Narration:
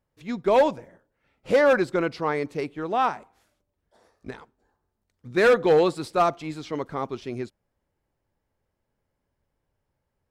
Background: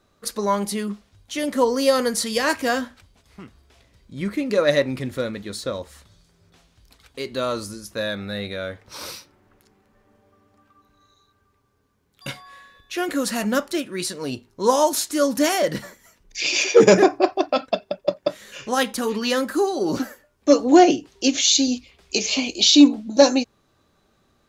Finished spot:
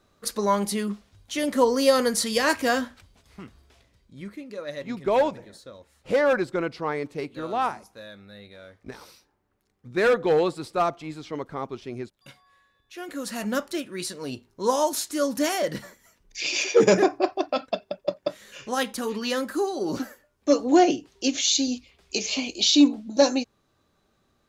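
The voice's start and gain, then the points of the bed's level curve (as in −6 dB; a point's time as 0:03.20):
4.60 s, −2.5 dB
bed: 0:03.64 −1 dB
0:04.53 −16.5 dB
0:12.74 −16.5 dB
0:13.50 −5 dB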